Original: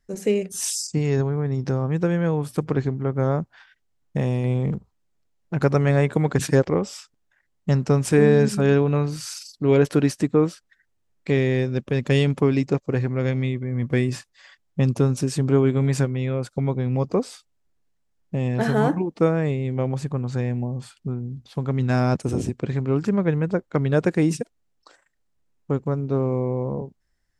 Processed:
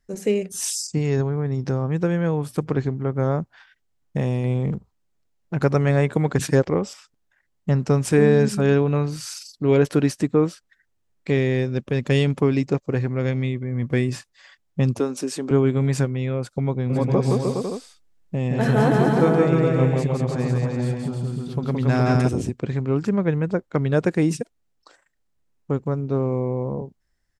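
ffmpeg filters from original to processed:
ffmpeg -i in.wav -filter_complex "[0:a]asettb=1/sr,asplit=3[link_01][link_02][link_03];[link_01]atrim=end=6.934[link_04];[link_02]atrim=start=6.93:end=7.8,asetpts=PTS-STARTPTS,afade=type=in:duration=0.004:curve=qsin,afade=type=out:start_time=0.866:duration=0.004:curve=qsin,acrossover=split=2800[link_05][link_06];[link_06]acompressor=threshold=-47dB:ratio=4:attack=1:release=60[link_07];[link_05][link_07]amix=inputs=2:normalize=0[link_08];[link_03]atrim=start=7.796[link_09];[link_04][link_08]acrossfade=duration=0.004:curve1=hsin:curve2=qsin[link_10];[link_10][link_09]acrossfade=duration=0.004:curve1=qsin:curve2=hsin,asettb=1/sr,asplit=3[link_11][link_12][link_13];[link_11]atrim=end=14.994[link_14];[link_12]atrim=start=14.99:end=15.51,asetpts=PTS-STARTPTS,afade=type=in:duration=0.004:curve=qsin,afade=type=out:start_time=0.516:duration=0.004:curve=qsin,highpass=frequency=240:width=0.5412,highpass=frequency=240:width=1.3066[link_15];[link_13]atrim=start=15.506[link_16];[link_14][link_15]acrossfade=duration=0.004:curve1=hsin:curve2=qsin[link_17];[link_17][link_16]acrossfade=duration=0.004:curve1=qsin:curve2=hsin,asplit=3[link_18][link_19][link_20];[link_18]afade=type=out:start_time=16.89:duration=0.02[link_21];[link_19]aecho=1:1:170|306|414.8|501.8|571.5:0.794|0.631|0.501|0.398|0.316,afade=type=in:start_time=16.89:duration=0.02,afade=type=out:start_time=22.27:duration=0.02[link_22];[link_20]afade=type=in:start_time=22.27:duration=0.02[link_23];[link_21][link_22][link_23]amix=inputs=3:normalize=0" out.wav

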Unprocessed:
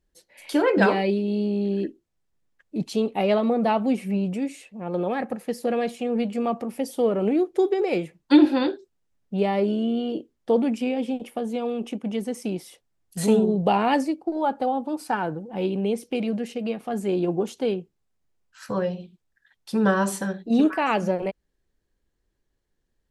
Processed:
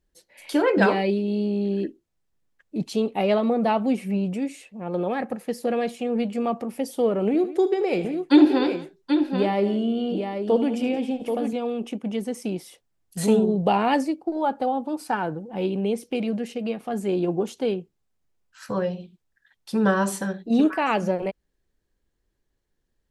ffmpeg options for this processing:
ffmpeg -i in.wav -filter_complex "[0:a]asettb=1/sr,asplit=3[link_01][link_02][link_03];[link_01]atrim=end=7.264[link_04];[link_02]atrim=start=7.26:end=11.53,asetpts=PTS-STARTPTS,afade=type=in:duration=0.004:curve=qsin,afade=type=out:start_time=4.266:duration=0.004:curve=qsin,aecho=1:1:75|175|783:0.2|0.141|0.473,atrim=end_sample=188307[link_05];[link_03]atrim=start=11.526[link_06];[link_04][link_05]acrossfade=duration=0.004:curve1=hsin:curve2=qsin[link_07];[link_07][link_06]acrossfade=duration=0.004:curve1=qsin:curve2=hsin" out.wav

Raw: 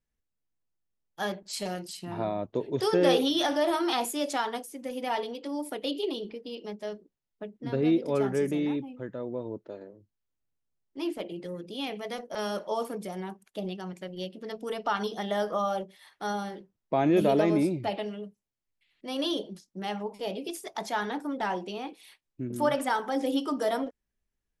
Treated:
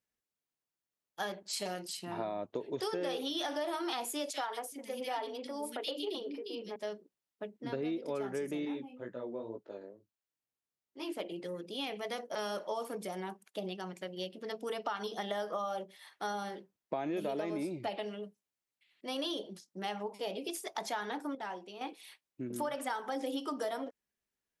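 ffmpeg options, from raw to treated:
ffmpeg -i in.wav -filter_complex "[0:a]asettb=1/sr,asplit=3[link_01][link_02][link_03];[link_01]atrim=end=4.304[link_04];[link_02]atrim=start=4.3:end=6.76,asetpts=PTS-STARTPTS,afade=type=in:duration=0.004:curve=qsin,afade=type=out:start_time=2.456:duration=0.004:curve=qsin,acrossover=split=290|2300[link_05][link_06][link_07];[link_06]adelay=40[link_08];[link_05]adelay=420[link_09];[link_09][link_08][link_07]amix=inputs=3:normalize=0,atrim=end_sample=108486[link_10];[link_03]atrim=start=6.756[link_11];[link_04][link_10]acrossfade=duration=0.004:curve1=hsin:curve2=qsin[link_12];[link_12][link_11]acrossfade=duration=0.004:curve1=qsin:curve2=hsin,asettb=1/sr,asplit=3[link_13][link_14][link_15];[link_13]atrim=end=8.654[link_16];[link_14]atrim=start=8.65:end=11.12,asetpts=PTS-STARTPTS,afade=type=in:duration=0.004:curve=qsin,afade=type=out:start_time=2.466:duration=0.004:curve=qsin,flanger=delay=16:depth=5.2:speed=2.1[link_17];[link_15]atrim=start=11.116[link_18];[link_16][link_17]acrossfade=duration=0.004:curve1=hsin:curve2=qsin[link_19];[link_19][link_18]acrossfade=duration=0.004:curve1=qsin:curve2=hsin,asplit=3[link_20][link_21][link_22];[link_20]atrim=end=21.352[link_23];[link_21]atrim=start=21.348:end=21.812,asetpts=PTS-STARTPTS,volume=-9.5dB[link_24];[link_22]atrim=start=21.808[link_25];[link_23][link_24]acrossfade=duration=0.004:curve1=hsin:curve2=hsin[link_26];[link_26][link_25]acrossfade=duration=0.004:curve1=hsin:curve2=hsin,highpass=frequency=350:poles=1,acompressor=threshold=-33dB:ratio=6" out.wav

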